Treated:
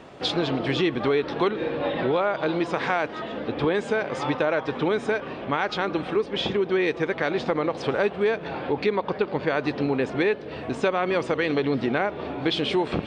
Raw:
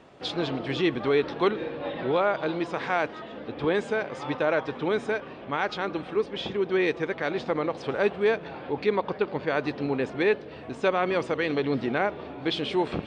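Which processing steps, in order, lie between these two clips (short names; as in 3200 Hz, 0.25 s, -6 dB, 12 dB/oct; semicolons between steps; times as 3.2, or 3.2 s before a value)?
compressor 3:1, threshold -29 dBFS, peak gain reduction 8.5 dB; gain +7.5 dB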